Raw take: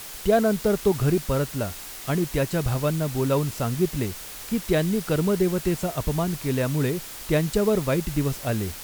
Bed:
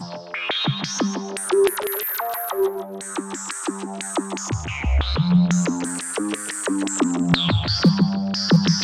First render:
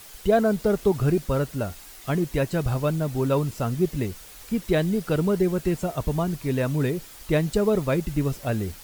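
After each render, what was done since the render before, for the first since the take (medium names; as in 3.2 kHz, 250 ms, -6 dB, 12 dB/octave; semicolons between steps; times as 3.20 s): noise reduction 8 dB, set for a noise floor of -39 dBFS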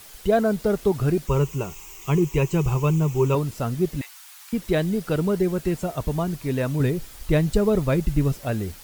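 1.27–3.35 s: rippled EQ curve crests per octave 0.73, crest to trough 13 dB; 4.01–4.53 s: steep high-pass 840 Hz; 6.80–8.32 s: bass shelf 110 Hz +11 dB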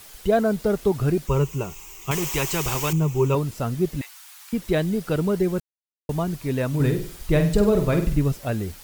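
2.11–2.93 s: spectrum-flattening compressor 2:1; 5.60–6.09 s: mute; 6.68–8.16 s: flutter echo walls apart 8.3 m, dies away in 0.44 s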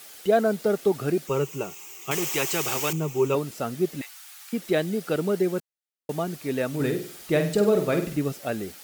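high-pass 240 Hz 12 dB/octave; band-stop 1 kHz, Q 6.9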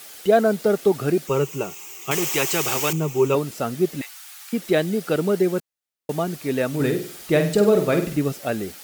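trim +4 dB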